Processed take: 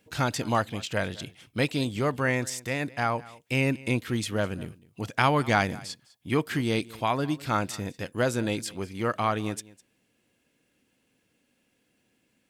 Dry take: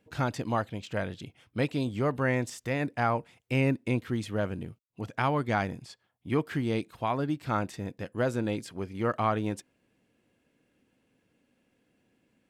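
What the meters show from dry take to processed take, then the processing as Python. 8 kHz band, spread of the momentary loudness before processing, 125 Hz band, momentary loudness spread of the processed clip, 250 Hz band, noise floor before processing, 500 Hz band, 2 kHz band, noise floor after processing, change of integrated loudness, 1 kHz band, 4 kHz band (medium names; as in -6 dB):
+10.5 dB, 11 LU, +1.0 dB, 10 LU, +1.5 dB, -74 dBFS, +2.0 dB, +5.0 dB, -72 dBFS, +2.5 dB, +3.0 dB, +8.5 dB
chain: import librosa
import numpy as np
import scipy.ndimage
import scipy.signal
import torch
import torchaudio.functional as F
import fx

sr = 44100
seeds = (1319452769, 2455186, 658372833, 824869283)

y = fx.high_shelf(x, sr, hz=2400.0, db=10.5)
y = fx.rider(y, sr, range_db=10, speed_s=2.0)
y = y + 10.0 ** (-21.0 / 20.0) * np.pad(y, (int(205 * sr / 1000.0), 0))[:len(y)]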